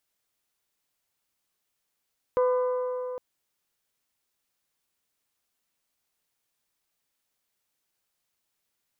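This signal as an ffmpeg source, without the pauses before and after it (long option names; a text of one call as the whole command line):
ffmpeg -f lavfi -i "aevalsrc='0.106*pow(10,-3*t/3.72)*sin(2*PI*502*t)+0.0398*pow(10,-3*t/3.022)*sin(2*PI*1004*t)+0.015*pow(10,-3*t/2.861)*sin(2*PI*1204.8*t)+0.00562*pow(10,-3*t/2.676)*sin(2*PI*1506*t)+0.00211*pow(10,-3*t/2.454)*sin(2*PI*2008*t)':duration=0.81:sample_rate=44100" out.wav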